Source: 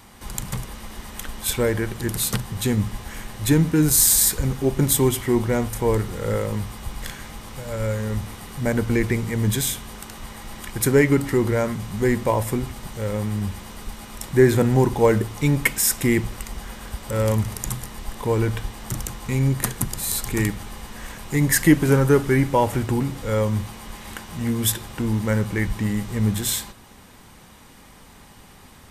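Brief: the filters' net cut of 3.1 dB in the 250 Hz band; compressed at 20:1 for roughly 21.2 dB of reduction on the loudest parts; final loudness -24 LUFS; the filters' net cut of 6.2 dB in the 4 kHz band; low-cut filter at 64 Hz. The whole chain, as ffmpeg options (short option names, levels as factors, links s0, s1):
-af "highpass=64,equalizer=f=250:t=o:g=-4,equalizer=f=4000:t=o:g=-8,acompressor=threshold=0.0224:ratio=20,volume=5.01"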